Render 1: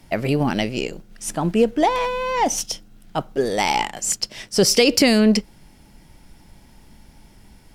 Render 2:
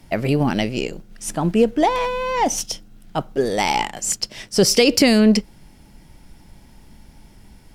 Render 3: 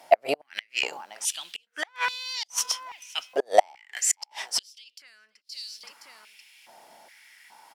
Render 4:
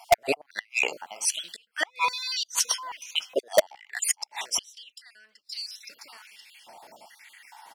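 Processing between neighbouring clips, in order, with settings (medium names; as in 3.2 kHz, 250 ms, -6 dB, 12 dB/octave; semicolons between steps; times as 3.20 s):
bass shelf 330 Hz +2.5 dB
feedback delay 519 ms, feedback 32%, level -23 dB; inverted gate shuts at -9 dBFS, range -36 dB; step-sequenced high-pass 2.4 Hz 680–4300 Hz
random holes in the spectrogram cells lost 39%; in parallel at -4 dB: integer overflow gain 11.5 dB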